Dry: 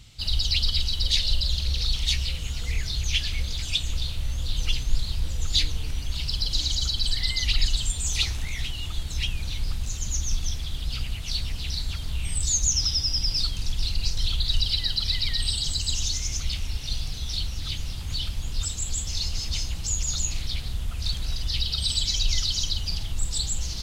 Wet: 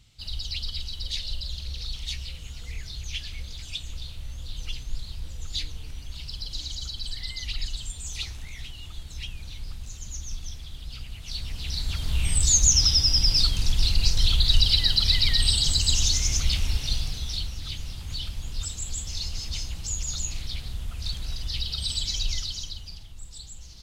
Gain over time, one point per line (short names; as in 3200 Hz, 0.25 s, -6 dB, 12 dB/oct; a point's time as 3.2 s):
11.07 s -8.5 dB
12.19 s +4.5 dB
16.72 s +4.5 dB
17.58 s -3.5 dB
22.25 s -3.5 dB
23.11 s -15 dB